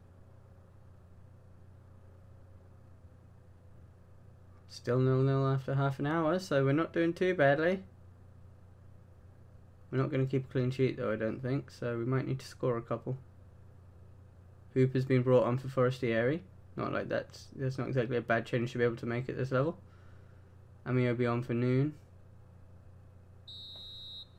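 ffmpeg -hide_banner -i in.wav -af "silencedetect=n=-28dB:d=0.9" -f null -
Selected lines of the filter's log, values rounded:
silence_start: 0.00
silence_end: 4.88 | silence_duration: 4.88
silence_start: 7.75
silence_end: 9.95 | silence_duration: 2.20
silence_start: 13.11
silence_end: 14.76 | silence_duration: 1.65
silence_start: 19.70
silence_end: 20.89 | silence_duration: 1.19
silence_start: 21.87
silence_end: 24.39 | silence_duration: 2.51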